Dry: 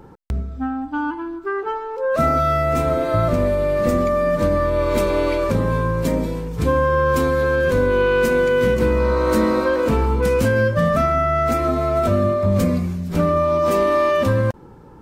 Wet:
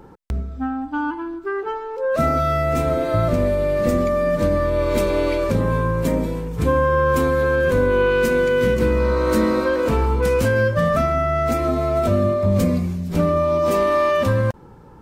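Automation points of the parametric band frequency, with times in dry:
parametric band −3.5 dB 0.91 octaves
120 Hz
from 0:01.34 1,100 Hz
from 0:05.61 4,800 Hz
from 0:08.10 830 Hz
from 0:09.85 220 Hz
from 0:10.99 1,400 Hz
from 0:13.74 320 Hz

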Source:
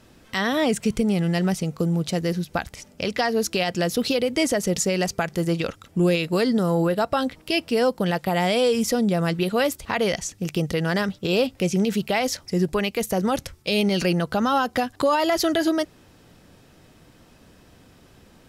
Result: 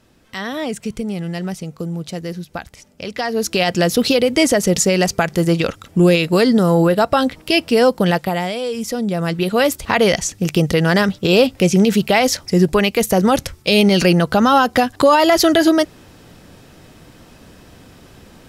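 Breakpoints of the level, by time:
0:03.04 −2.5 dB
0:03.67 +7.5 dB
0:08.14 +7.5 dB
0:08.59 −4 dB
0:09.84 +8.5 dB

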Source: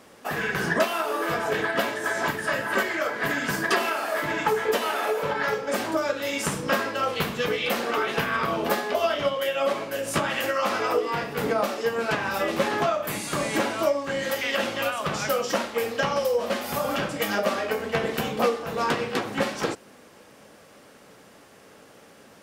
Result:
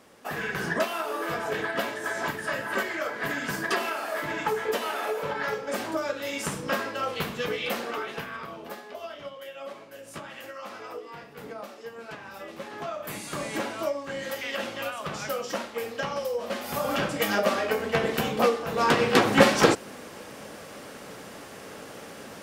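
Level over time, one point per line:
0:07.72 −4 dB
0:08.62 −15 dB
0:12.68 −15 dB
0:13.08 −6 dB
0:16.41 −6 dB
0:17.03 +0.5 dB
0:18.74 +0.5 dB
0:19.23 +8.5 dB

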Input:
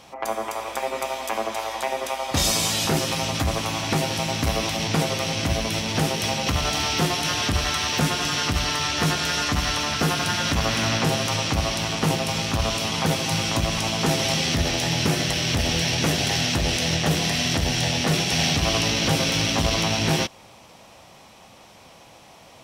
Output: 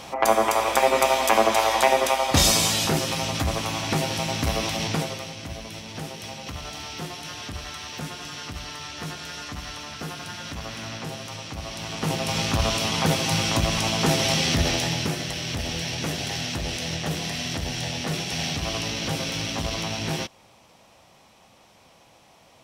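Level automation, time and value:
0:01.87 +8 dB
0:02.99 −1.5 dB
0:04.86 −1.5 dB
0:05.36 −12 dB
0:11.55 −12 dB
0:12.40 +0.5 dB
0:14.72 +0.5 dB
0:15.18 −6.5 dB

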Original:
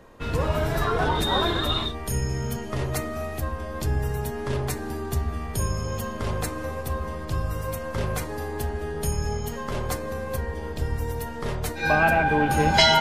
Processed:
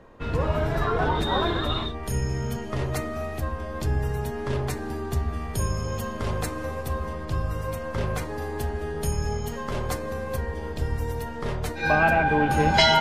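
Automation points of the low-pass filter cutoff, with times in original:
low-pass filter 6 dB per octave
2,600 Hz
from 0:02.03 5,500 Hz
from 0:05.33 9,500 Hz
from 0:07.13 4,900 Hz
from 0:08.42 8,600 Hz
from 0:11.21 5,000 Hz

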